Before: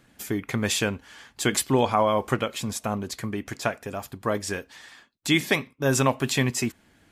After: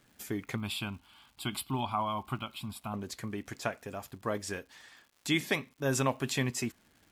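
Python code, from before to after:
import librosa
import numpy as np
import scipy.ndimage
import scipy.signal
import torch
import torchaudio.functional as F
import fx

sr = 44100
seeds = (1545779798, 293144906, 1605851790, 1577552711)

y = fx.fixed_phaser(x, sr, hz=1800.0, stages=6, at=(0.56, 2.94))
y = fx.dmg_crackle(y, sr, seeds[0], per_s=230.0, level_db=-44.0)
y = y * 10.0 ** (-7.5 / 20.0)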